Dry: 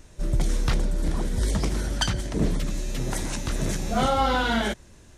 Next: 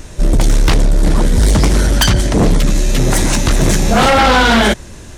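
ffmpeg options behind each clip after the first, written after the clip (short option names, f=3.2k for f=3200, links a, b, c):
-af "aeval=exprs='0.299*sin(PI/2*2.82*val(0)/0.299)':c=same,volume=4.5dB"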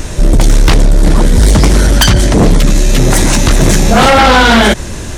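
-af "alimiter=level_in=13dB:limit=-1dB:release=50:level=0:latency=1,volume=-1dB"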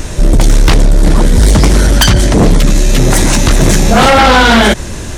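-af anull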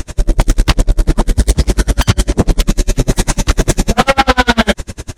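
-af "aeval=exprs='val(0)*pow(10,-36*(0.5-0.5*cos(2*PI*10*n/s))/20)':c=same,volume=1dB"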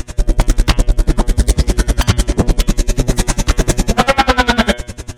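-af "bandreject=f=121.3:t=h:w=4,bandreject=f=242.6:t=h:w=4,bandreject=f=363.9:t=h:w=4,bandreject=f=485.2:t=h:w=4,bandreject=f=606.5:t=h:w=4,bandreject=f=727.8:t=h:w=4,bandreject=f=849.1:t=h:w=4,bandreject=f=970.4:t=h:w=4,bandreject=f=1.0917k:t=h:w=4,bandreject=f=1.213k:t=h:w=4,bandreject=f=1.3343k:t=h:w=4,bandreject=f=1.4556k:t=h:w=4,bandreject=f=1.5769k:t=h:w=4,bandreject=f=1.6982k:t=h:w=4,bandreject=f=1.8195k:t=h:w=4,bandreject=f=1.9408k:t=h:w=4,bandreject=f=2.0621k:t=h:w=4,bandreject=f=2.1834k:t=h:w=4,bandreject=f=2.3047k:t=h:w=4,bandreject=f=2.426k:t=h:w=4,bandreject=f=2.5473k:t=h:w=4,bandreject=f=2.6686k:t=h:w=4,bandreject=f=2.7899k:t=h:w=4,bandreject=f=2.9112k:t=h:w=4,bandreject=f=3.0325k:t=h:w=4,bandreject=f=3.1538k:t=h:w=4,bandreject=f=3.2751k:t=h:w=4,bandreject=f=3.3964k:t=h:w=4,bandreject=f=3.5177k:t=h:w=4,volume=-1dB"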